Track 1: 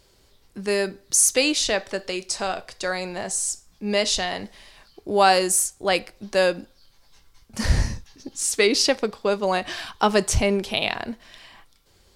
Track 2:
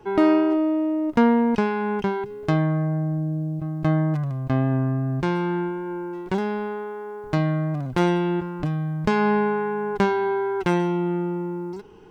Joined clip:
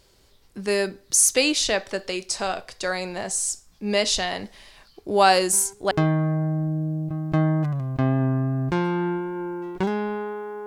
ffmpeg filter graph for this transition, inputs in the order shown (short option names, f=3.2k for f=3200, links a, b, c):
-filter_complex "[1:a]asplit=2[a][b];[0:a]apad=whole_dur=10.66,atrim=end=10.66,atrim=end=5.912[c];[b]atrim=start=2.418:end=7.17[d];[a]atrim=start=2.02:end=2.42,asetpts=PTS-STARTPTS,volume=-18dB,afade=t=in:d=0.004:c=hsin,afade=t=out:st=0.396:d=0.004:c=hsin,adelay=5510[e];[c][d]acrossfade=d=0.004:c1=hsin:c2=hsin[f];[f][e]amix=inputs=2:normalize=0"